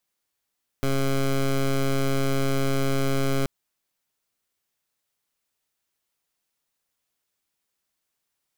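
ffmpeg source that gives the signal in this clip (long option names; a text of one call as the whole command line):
ffmpeg -f lavfi -i "aevalsrc='0.075*(2*lt(mod(136*t,1),0.15)-1)':duration=2.63:sample_rate=44100" out.wav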